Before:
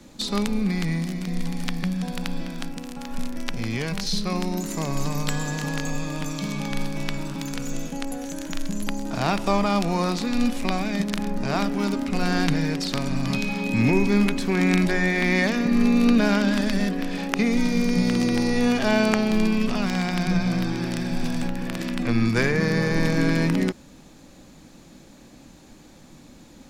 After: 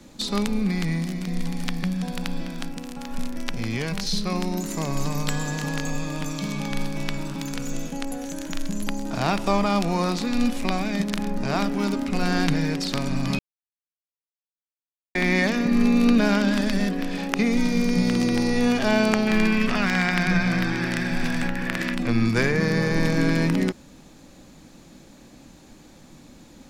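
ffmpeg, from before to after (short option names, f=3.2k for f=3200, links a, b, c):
-filter_complex "[0:a]asettb=1/sr,asplit=3[a][b][c];[a]atrim=end=19.274[d];[b]atrim=start=19.27:end=21.95,asetpts=PTS-STARTPTS,afade=t=in:d=0.004:c=qsin,afade=t=out:st=2.676:d=0.004:c=qsin,equalizer=f=1.8k:t=o:w=1.1:g=11[e];[c]atrim=start=21.946[f];[d][e]acrossfade=d=0.004:c1=hsin:c2=qsin[g];[g][f]acrossfade=d=0.004:c1=qsin:c2=hsin,asplit=3[h][i][j];[h]atrim=end=13.39,asetpts=PTS-STARTPTS,afade=t=out:st=13.386:d=0.004:c=hsin[k];[i]atrim=start=13.39:end=15.15,asetpts=PTS-STARTPTS,volume=0[l];[j]atrim=start=15.15,asetpts=PTS-STARTPTS,afade=t=in:d=0.004:c=hsin[m];[k][l][m]concat=n=3:v=0:a=1"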